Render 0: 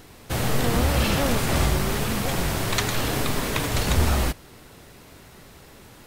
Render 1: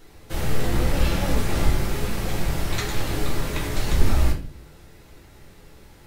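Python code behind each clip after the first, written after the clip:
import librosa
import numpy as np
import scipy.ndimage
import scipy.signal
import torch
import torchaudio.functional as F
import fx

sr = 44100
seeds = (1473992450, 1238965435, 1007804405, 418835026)

y = fx.octave_divider(x, sr, octaves=2, level_db=0.0)
y = fx.room_shoebox(y, sr, seeds[0], volume_m3=39.0, walls='mixed', distance_m=0.73)
y = y * librosa.db_to_amplitude(-8.5)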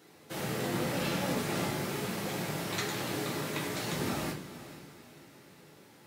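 y = scipy.signal.sosfilt(scipy.signal.butter(4, 140.0, 'highpass', fs=sr, output='sos'), x)
y = fx.echo_diffused(y, sr, ms=465, feedback_pct=40, wet_db=-14)
y = y * librosa.db_to_amplitude(-5.0)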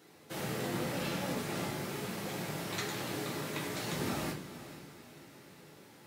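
y = fx.rider(x, sr, range_db=4, speed_s=2.0)
y = y * librosa.db_to_amplitude(-3.5)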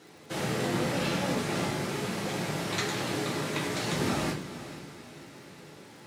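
y = scipy.signal.sosfilt(scipy.signal.butter(2, 9600.0, 'lowpass', fs=sr, output='sos'), x)
y = fx.dmg_crackle(y, sr, seeds[1], per_s=85.0, level_db=-53.0)
y = y * librosa.db_to_amplitude(6.5)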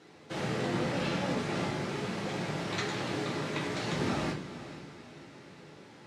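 y = fx.air_absorb(x, sr, metres=71.0)
y = y * librosa.db_to_amplitude(-2.0)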